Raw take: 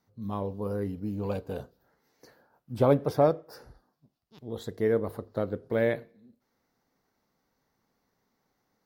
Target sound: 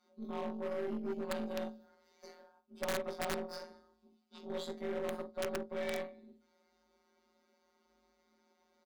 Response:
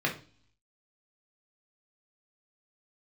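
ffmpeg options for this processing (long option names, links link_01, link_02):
-filter_complex "[0:a]aecho=1:1:22|52:0.2|0.335[link_01];[1:a]atrim=start_sample=2205,asetrate=79380,aresample=44100[link_02];[link_01][link_02]afir=irnorm=-1:irlink=0,afftfilt=real='hypot(re,im)*cos(PI*b)':imag='0':win_size=1024:overlap=0.75,areverse,acompressor=threshold=-36dB:ratio=4,areverse,afreqshift=47,aeval=exprs='clip(val(0),-1,0.0158)':channel_layout=same,aeval=exprs='0.0473*(cos(1*acos(clip(val(0)/0.0473,-1,1)))-cos(1*PI/2))+0.00168*(cos(2*acos(clip(val(0)/0.0473,-1,1)))-cos(2*PI/2))+0.00473*(cos(3*acos(clip(val(0)/0.0473,-1,1)))-cos(3*PI/2))+0.000944*(cos(5*acos(clip(val(0)/0.0473,-1,1)))-cos(5*PI/2))+0.00376*(cos(6*acos(clip(val(0)/0.0473,-1,1)))-cos(6*PI/2))':channel_layout=same,aeval=exprs='(mod(31.6*val(0)+1,2)-1)/31.6':channel_layout=same,volume=3dB"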